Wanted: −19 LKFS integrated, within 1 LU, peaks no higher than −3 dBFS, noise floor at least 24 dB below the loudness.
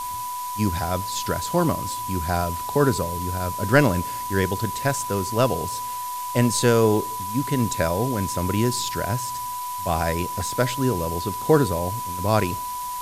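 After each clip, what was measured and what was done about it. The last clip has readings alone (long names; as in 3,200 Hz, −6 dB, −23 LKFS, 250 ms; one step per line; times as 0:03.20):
interfering tone 990 Hz; level of the tone −28 dBFS; background noise floor −30 dBFS; target noise floor −48 dBFS; integrated loudness −23.5 LKFS; sample peak −4.5 dBFS; target loudness −19.0 LKFS
→ notch filter 990 Hz, Q 30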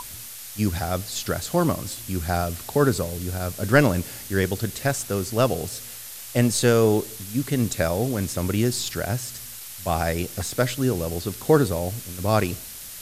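interfering tone none found; background noise floor −39 dBFS; target noise floor −48 dBFS
→ noise reduction from a noise print 9 dB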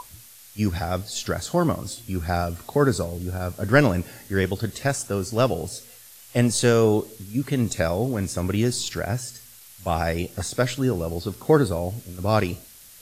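background noise floor −48 dBFS; target noise floor −49 dBFS
→ noise reduction from a noise print 6 dB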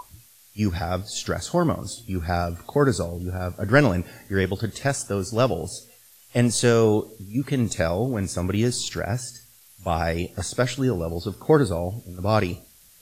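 background noise floor −53 dBFS; integrated loudness −24.5 LKFS; sample peak −4.5 dBFS; target loudness −19.0 LKFS
→ level +5.5 dB
brickwall limiter −3 dBFS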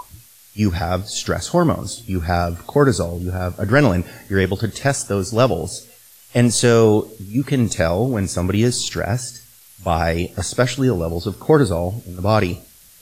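integrated loudness −19.5 LKFS; sample peak −3.0 dBFS; background noise floor −48 dBFS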